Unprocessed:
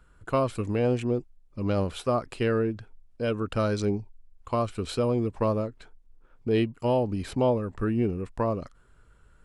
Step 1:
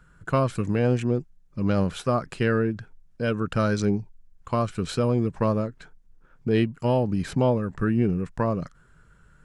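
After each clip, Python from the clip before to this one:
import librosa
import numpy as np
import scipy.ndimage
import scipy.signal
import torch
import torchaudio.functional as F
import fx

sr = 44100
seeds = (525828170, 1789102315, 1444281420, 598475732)

y = fx.graphic_eq_15(x, sr, hz=(160, 1600, 6300), db=(12, 7, 5))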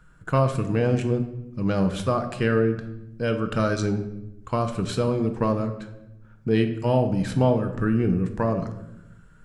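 y = fx.room_shoebox(x, sr, seeds[0], volume_m3=330.0, walls='mixed', distance_m=0.56)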